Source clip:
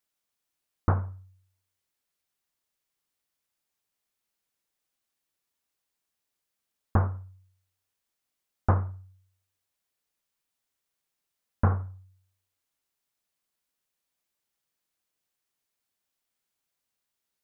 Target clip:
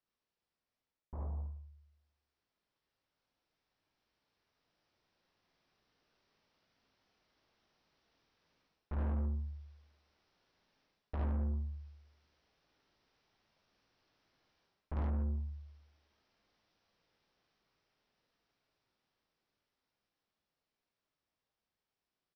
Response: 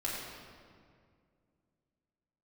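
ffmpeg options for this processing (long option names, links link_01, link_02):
-af "lowpass=frequency=1100:poles=1,aemphasis=mode=production:type=50kf,areverse,acompressor=threshold=-31dB:ratio=6,areverse,alimiter=level_in=10dB:limit=-24dB:level=0:latency=1,volume=-10dB,dynaudnorm=framelen=230:gausssize=31:maxgain=15dB,aresample=16000,asoftclip=type=tanh:threshold=-33.5dB,aresample=44100,asetrate=34398,aresample=44100,aecho=1:1:53|72:0.631|0.708,volume=-2dB"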